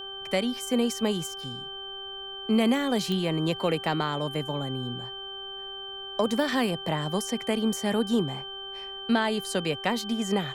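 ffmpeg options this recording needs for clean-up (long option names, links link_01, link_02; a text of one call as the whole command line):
ffmpeg -i in.wav -af "adeclick=threshold=4,bandreject=frequency=391.3:width_type=h:width=4,bandreject=frequency=782.6:width_type=h:width=4,bandreject=frequency=1173.9:width_type=h:width=4,bandreject=frequency=1565.2:width_type=h:width=4,bandreject=frequency=3100:width=30,agate=range=-21dB:threshold=-31dB" out.wav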